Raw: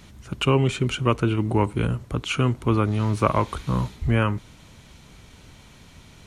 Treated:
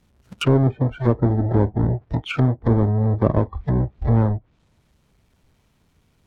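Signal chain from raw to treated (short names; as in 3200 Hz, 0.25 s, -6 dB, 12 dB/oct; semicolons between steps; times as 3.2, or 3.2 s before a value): half-waves squared off; spectral noise reduction 19 dB; treble ducked by the level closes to 660 Hz, closed at -16.5 dBFS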